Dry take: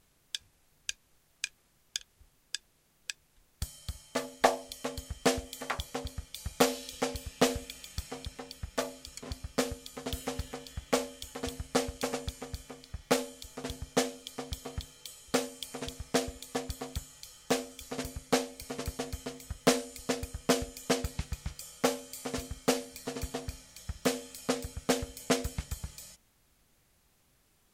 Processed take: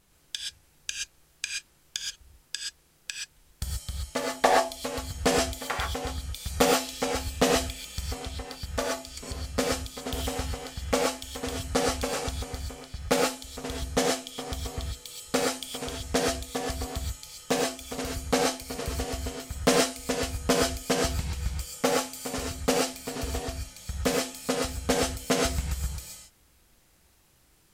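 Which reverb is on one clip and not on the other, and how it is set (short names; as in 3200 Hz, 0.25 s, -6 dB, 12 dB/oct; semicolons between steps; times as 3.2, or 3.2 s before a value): non-linear reverb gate 0.15 s rising, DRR -1.5 dB; gain +2 dB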